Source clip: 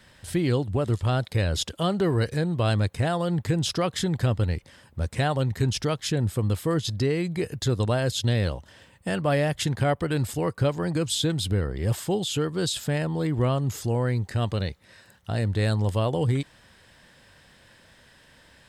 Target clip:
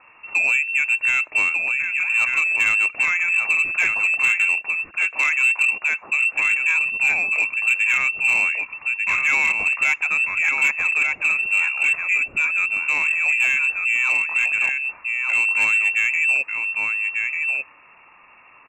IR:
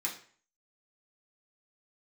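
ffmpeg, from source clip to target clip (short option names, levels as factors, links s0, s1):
-filter_complex "[0:a]lowpass=f=2400:t=q:w=0.5098,lowpass=f=2400:t=q:w=0.6013,lowpass=f=2400:t=q:w=0.9,lowpass=f=2400:t=q:w=2.563,afreqshift=-2800,asettb=1/sr,asplit=3[s0][s1][s2];[s0]atrim=end=1.494[s3];[s1]atrim=start=1.49:end=2.14,asetpts=PTS-STARTPTS,afade=t=in:d=0.004:c=qsin,afade=t=out:st=0.646:d=0.004:c=qsin,acompressor=threshold=0.0282:ratio=2.5[s4];[s2]atrim=start=2.136[s5];[s3][s4]acrossfade=d=0.004:c1=hsin:c2=qsin[s6];[s6][s5]acrossfade=d=0.004:c1=qsin:c2=hsin,asplit=2[s7][s8];[s8]aecho=0:1:1194:0.562[s9];[s7][s9]amix=inputs=2:normalize=0,asoftclip=type=tanh:threshold=0.158,asettb=1/sr,asplit=3[s10][s11][s12];[s10]atrim=end=4.994[s13];[s11]atrim=start=4.99:end=6.32,asetpts=PTS-STARTPTS,afade=t=in:d=0.004:c=qsin,afade=t=out:st=1.326:d=0.004:c=qsin,lowshelf=f=260:g=-11.5[s14];[s12]atrim=start=6.316[s15];[s13][s14]acrossfade=d=0.004:c1=hsin:c2=qsin[s16];[s16][s15]acrossfade=d=0.004:c1=qsin:c2=hsin,asplit=2[s17][s18];[1:a]atrim=start_sample=2205,atrim=end_sample=4410[s19];[s18][s19]afir=irnorm=-1:irlink=0,volume=0.0668[s20];[s17][s20]amix=inputs=2:normalize=0,volume=1.78"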